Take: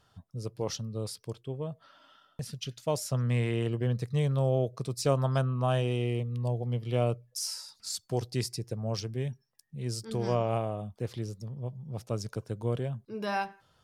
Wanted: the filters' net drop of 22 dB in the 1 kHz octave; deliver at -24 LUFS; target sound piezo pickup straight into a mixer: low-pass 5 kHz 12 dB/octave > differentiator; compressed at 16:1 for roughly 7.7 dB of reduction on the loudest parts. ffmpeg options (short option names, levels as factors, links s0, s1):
-af "equalizer=f=1000:t=o:g=-5.5,acompressor=threshold=0.0316:ratio=16,lowpass=5000,aderivative,volume=22.4"